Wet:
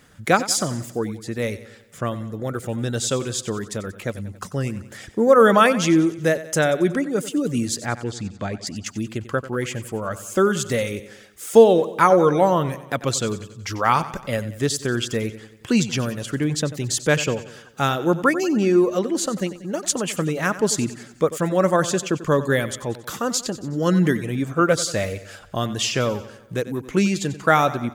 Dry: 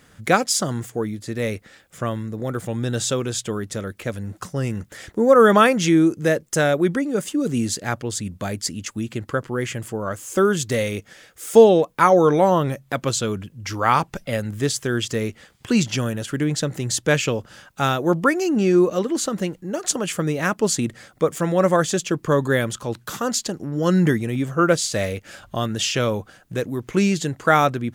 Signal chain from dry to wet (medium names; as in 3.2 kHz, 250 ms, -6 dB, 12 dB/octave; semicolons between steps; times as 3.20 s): reverb removal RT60 0.51 s; 7.86–8.67 s: distance through air 120 m; on a send: feedback delay 92 ms, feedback 53%, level -15 dB